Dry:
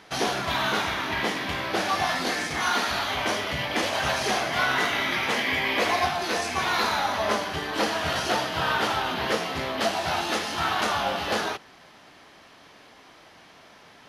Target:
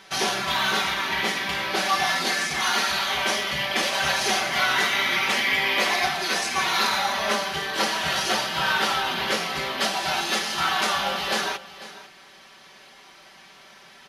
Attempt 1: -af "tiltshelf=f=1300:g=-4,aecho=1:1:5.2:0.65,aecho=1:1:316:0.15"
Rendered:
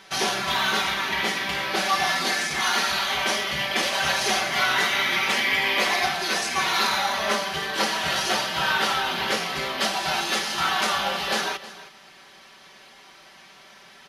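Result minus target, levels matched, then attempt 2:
echo 180 ms early
-af "tiltshelf=f=1300:g=-4,aecho=1:1:5.2:0.65,aecho=1:1:496:0.15"

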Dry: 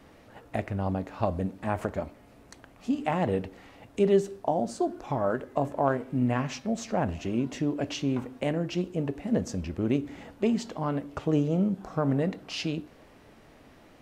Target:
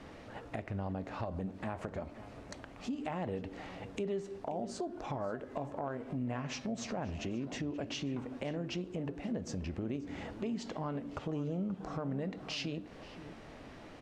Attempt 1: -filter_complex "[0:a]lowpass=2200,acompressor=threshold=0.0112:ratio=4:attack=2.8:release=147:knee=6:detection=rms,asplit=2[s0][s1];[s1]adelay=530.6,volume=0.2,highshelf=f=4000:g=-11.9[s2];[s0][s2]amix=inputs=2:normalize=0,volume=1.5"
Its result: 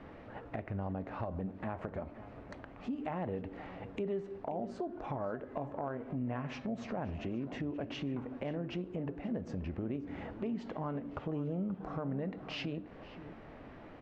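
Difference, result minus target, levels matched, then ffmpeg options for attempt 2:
8 kHz band -15.5 dB
-filter_complex "[0:a]lowpass=7000,acompressor=threshold=0.0112:ratio=4:attack=2.8:release=147:knee=6:detection=rms,asplit=2[s0][s1];[s1]adelay=530.6,volume=0.2,highshelf=f=4000:g=-11.9[s2];[s0][s2]amix=inputs=2:normalize=0,volume=1.5"

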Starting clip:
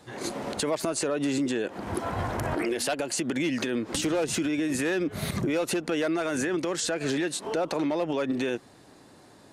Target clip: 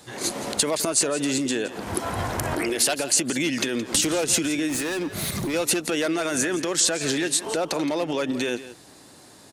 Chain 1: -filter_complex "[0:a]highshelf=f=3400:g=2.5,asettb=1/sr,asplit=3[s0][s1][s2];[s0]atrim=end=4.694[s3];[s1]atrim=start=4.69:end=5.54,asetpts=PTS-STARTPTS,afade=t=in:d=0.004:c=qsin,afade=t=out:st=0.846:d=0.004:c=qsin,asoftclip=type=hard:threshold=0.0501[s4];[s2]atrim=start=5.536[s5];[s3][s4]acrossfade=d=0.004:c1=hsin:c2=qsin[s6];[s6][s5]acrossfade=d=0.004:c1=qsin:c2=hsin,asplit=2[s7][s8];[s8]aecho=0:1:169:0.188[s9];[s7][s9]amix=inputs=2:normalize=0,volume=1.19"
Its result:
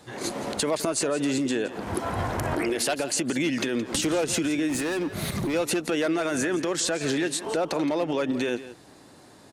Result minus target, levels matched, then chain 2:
8 kHz band -4.5 dB
-filter_complex "[0:a]highshelf=f=3400:g=11.5,asettb=1/sr,asplit=3[s0][s1][s2];[s0]atrim=end=4.694[s3];[s1]atrim=start=4.69:end=5.54,asetpts=PTS-STARTPTS,afade=t=in:d=0.004:c=qsin,afade=t=out:st=0.846:d=0.004:c=qsin,asoftclip=type=hard:threshold=0.0501[s4];[s2]atrim=start=5.536[s5];[s3][s4]acrossfade=d=0.004:c1=hsin:c2=qsin[s6];[s6][s5]acrossfade=d=0.004:c1=qsin:c2=hsin,asplit=2[s7][s8];[s8]aecho=0:1:169:0.188[s9];[s7][s9]amix=inputs=2:normalize=0,volume=1.19"

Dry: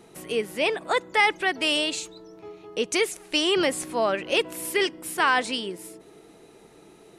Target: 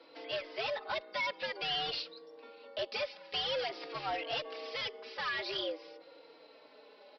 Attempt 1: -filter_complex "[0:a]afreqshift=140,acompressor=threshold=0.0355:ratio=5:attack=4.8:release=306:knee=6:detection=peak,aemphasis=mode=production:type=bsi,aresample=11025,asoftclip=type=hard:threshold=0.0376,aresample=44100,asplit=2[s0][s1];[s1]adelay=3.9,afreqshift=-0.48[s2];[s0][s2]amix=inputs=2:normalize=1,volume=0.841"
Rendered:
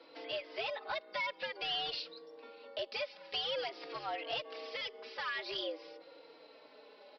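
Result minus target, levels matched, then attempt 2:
compression: peak gain reduction +6.5 dB
-filter_complex "[0:a]afreqshift=140,acompressor=threshold=0.0891:ratio=5:attack=4.8:release=306:knee=6:detection=peak,aemphasis=mode=production:type=bsi,aresample=11025,asoftclip=type=hard:threshold=0.0376,aresample=44100,asplit=2[s0][s1];[s1]adelay=3.9,afreqshift=-0.48[s2];[s0][s2]amix=inputs=2:normalize=1,volume=0.841"

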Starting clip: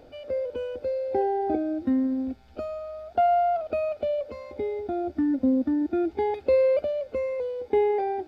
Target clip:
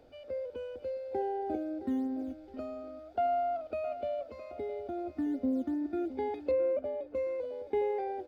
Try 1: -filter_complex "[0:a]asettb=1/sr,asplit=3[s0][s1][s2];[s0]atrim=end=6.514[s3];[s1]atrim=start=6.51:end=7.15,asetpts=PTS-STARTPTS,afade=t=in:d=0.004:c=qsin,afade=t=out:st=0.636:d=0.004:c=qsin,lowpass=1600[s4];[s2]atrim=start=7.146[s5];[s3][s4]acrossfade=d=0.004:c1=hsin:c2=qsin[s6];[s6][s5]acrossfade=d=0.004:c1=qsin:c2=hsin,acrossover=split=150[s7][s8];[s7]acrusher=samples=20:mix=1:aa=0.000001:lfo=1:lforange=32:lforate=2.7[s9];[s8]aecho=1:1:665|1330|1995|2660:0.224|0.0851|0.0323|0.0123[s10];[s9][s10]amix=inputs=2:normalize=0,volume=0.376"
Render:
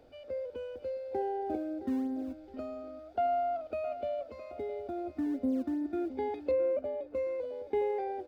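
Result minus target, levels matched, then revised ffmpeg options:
decimation with a swept rate: distortion +9 dB
-filter_complex "[0:a]asettb=1/sr,asplit=3[s0][s1][s2];[s0]atrim=end=6.514[s3];[s1]atrim=start=6.51:end=7.15,asetpts=PTS-STARTPTS,afade=t=in:d=0.004:c=qsin,afade=t=out:st=0.636:d=0.004:c=qsin,lowpass=1600[s4];[s2]atrim=start=7.146[s5];[s3][s4]acrossfade=d=0.004:c1=hsin:c2=qsin[s6];[s6][s5]acrossfade=d=0.004:c1=qsin:c2=hsin,acrossover=split=150[s7][s8];[s7]acrusher=samples=8:mix=1:aa=0.000001:lfo=1:lforange=12.8:lforate=2.7[s9];[s8]aecho=1:1:665|1330|1995|2660:0.224|0.0851|0.0323|0.0123[s10];[s9][s10]amix=inputs=2:normalize=0,volume=0.376"

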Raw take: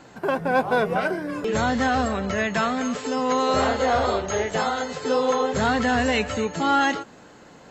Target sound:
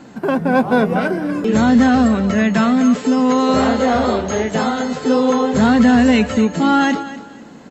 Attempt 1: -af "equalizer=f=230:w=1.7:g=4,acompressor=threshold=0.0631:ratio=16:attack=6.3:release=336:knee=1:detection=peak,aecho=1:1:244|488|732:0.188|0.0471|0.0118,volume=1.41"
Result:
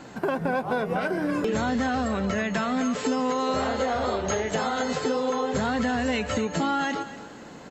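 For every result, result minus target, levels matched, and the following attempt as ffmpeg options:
compression: peak gain reduction +11.5 dB; 250 Hz band -3.0 dB
-af "equalizer=f=230:w=1.7:g=4,aecho=1:1:244|488|732:0.188|0.0471|0.0118,volume=1.41"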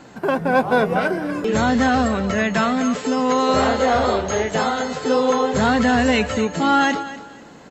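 250 Hz band -3.5 dB
-af "equalizer=f=230:w=1.7:g=12.5,aecho=1:1:244|488|732:0.188|0.0471|0.0118,volume=1.41"

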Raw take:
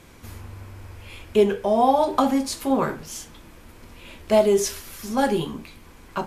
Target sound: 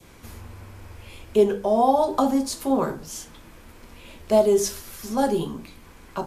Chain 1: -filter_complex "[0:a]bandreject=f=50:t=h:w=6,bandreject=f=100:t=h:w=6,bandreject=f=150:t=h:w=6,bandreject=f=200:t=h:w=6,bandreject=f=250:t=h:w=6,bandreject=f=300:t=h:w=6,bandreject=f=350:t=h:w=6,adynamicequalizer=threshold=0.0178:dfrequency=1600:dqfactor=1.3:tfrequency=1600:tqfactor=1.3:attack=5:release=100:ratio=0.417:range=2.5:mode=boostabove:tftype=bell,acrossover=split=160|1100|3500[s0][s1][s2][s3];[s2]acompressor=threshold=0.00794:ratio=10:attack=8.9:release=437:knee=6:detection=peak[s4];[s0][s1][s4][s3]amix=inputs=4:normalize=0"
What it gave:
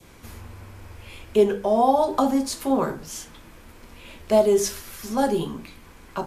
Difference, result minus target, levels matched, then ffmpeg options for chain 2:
compression: peak gain reduction -6.5 dB
-filter_complex "[0:a]bandreject=f=50:t=h:w=6,bandreject=f=100:t=h:w=6,bandreject=f=150:t=h:w=6,bandreject=f=200:t=h:w=6,bandreject=f=250:t=h:w=6,bandreject=f=300:t=h:w=6,bandreject=f=350:t=h:w=6,adynamicequalizer=threshold=0.0178:dfrequency=1600:dqfactor=1.3:tfrequency=1600:tqfactor=1.3:attack=5:release=100:ratio=0.417:range=2.5:mode=boostabove:tftype=bell,acrossover=split=160|1100|3500[s0][s1][s2][s3];[s2]acompressor=threshold=0.00355:ratio=10:attack=8.9:release=437:knee=6:detection=peak[s4];[s0][s1][s4][s3]amix=inputs=4:normalize=0"

